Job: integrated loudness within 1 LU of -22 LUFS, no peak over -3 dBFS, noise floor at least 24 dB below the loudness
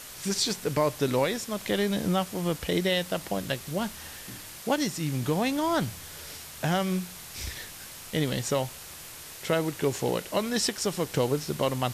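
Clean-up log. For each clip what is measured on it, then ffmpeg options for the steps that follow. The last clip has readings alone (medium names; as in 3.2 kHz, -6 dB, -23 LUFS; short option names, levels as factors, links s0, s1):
noise floor -44 dBFS; noise floor target -53 dBFS; loudness -28.5 LUFS; peak level -13.0 dBFS; loudness target -22.0 LUFS
-> -af "afftdn=nr=9:nf=-44"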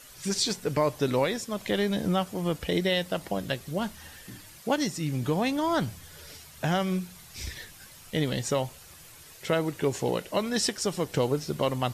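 noise floor -50 dBFS; noise floor target -53 dBFS
-> -af "afftdn=nr=6:nf=-50"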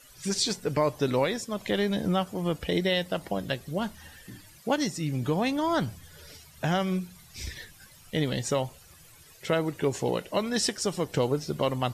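noise floor -54 dBFS; loudness -29.0 LUFS; peak level -13.0 dBFS; loudness target -22.0 LUFS
-> -af "volume=2.24"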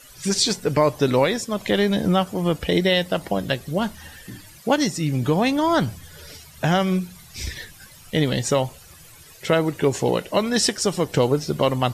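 loudness -22.0 LUFS; peak level -6.0 dBFS; noise floor -47 dBFS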